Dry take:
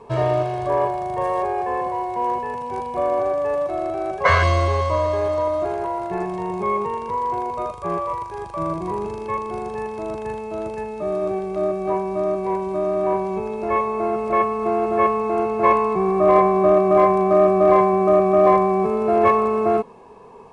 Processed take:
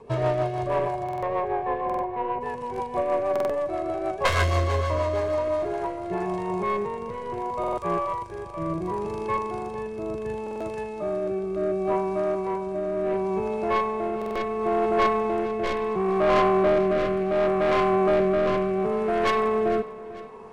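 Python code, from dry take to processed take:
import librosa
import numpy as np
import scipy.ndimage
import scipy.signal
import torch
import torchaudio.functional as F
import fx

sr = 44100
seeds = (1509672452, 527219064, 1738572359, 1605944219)

y = fx.tracing_dist(x, sr, depth_ms=0.16)
y = fx.lowpass(y, sr, hz=fx.line((1.03, 3000.0), (2.4, 1500.0)), slope=12, at=(1.03, 2.4), fade=0.02)
y = 10.0 ** (-15.0 / 20.0) * np.tanh(y / 10.0 ** (-15.0 / 20.0))
y = fx.rotary_switch(y, sr, hz=6.3, then_hz=0.7, switch_at_s=5.26)
y = fx.echo_feedback(y, sr, ms=448, feedback_pct=49, wet_db=-17.0)
y = fx.buffer_glitch(y, sr, at_s=(1.04, 1.85, 3.31, 7.59, 10.42, 14.17), block=2048, repeats=3)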